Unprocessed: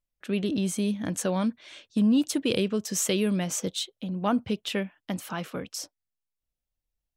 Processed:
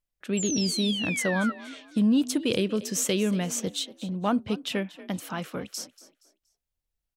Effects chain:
sound drawn into the spectrogram fall, 0:00.37–0:01.52, 1,300–7,700 Hz −32 dBFS
echo with shifted repeats 236 ms, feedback 33%, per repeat +40 Hz, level −17.5 dB

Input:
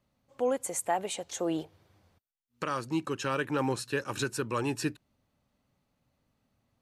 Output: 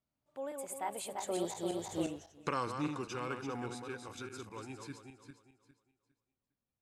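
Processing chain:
feedback delay that plays each chunk backwards 187 ms, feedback 52%, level −4.5 dB
source passing by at 0:02.02, 29 m/s, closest 2.5 metres
level +13 dB

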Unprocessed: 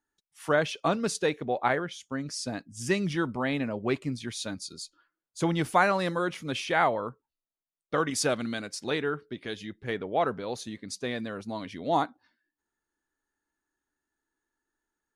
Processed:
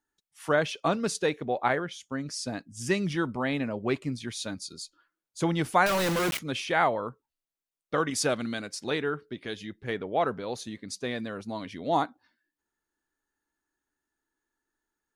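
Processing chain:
0:05.86–0:06.39: log-companded quantiser 2 bits

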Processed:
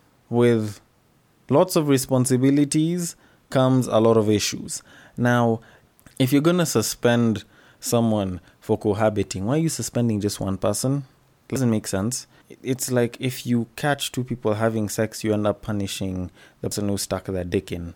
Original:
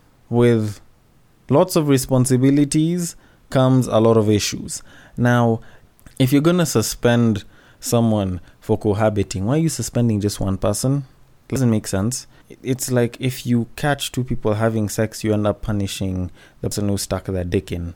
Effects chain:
high-pass filter 130 Hz 6 dB per octave
level −2 dB

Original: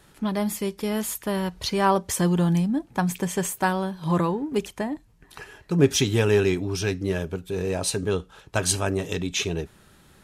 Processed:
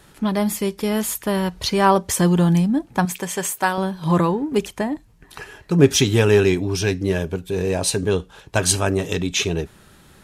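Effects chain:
0:03.05–0:03.78: low-shelf EQ 310 Hz −12 dB
0:06.48–0:08.59: notch filter 1,300 Hz, Q 11
level +5 dB

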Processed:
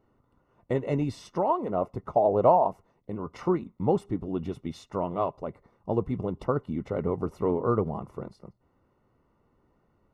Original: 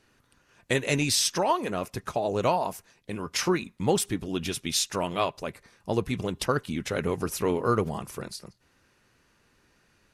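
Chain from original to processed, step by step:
0:01.67–0:02.68: dynamic equaliser 680 Hz, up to +7 dB, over −36 dBFS, Q 1.1
Savitzky-Golay smoothing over 65 samples

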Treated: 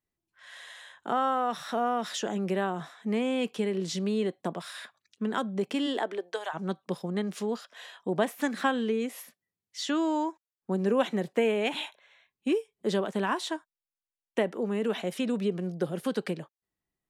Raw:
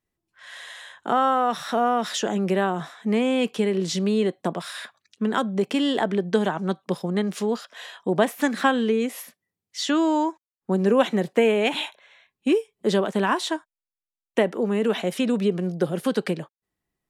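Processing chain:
0:05.86–0:06.53: high-pass filter 200 Hz → 720 Hz 24 dB per octave
level −6.5 dB

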